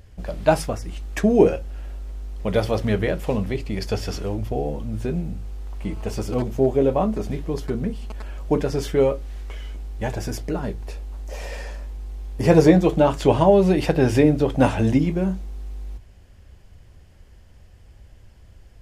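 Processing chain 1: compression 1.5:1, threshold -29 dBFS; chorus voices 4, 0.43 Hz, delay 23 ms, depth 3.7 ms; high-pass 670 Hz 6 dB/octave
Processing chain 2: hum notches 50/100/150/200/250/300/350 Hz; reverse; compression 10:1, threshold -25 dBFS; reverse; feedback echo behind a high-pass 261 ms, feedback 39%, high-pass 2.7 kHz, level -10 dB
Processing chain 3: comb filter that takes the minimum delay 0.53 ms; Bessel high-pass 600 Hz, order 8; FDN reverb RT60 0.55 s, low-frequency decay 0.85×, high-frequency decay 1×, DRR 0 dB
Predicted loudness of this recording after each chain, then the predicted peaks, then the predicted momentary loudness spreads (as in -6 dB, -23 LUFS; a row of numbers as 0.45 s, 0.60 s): -36.0 LUFS, -31.0 LUFS, -26.5 LUFS; -17.5 dBFS, -14.0 dBFS, -5.5 dBFS; 18 LU, 16 LU, 21 LU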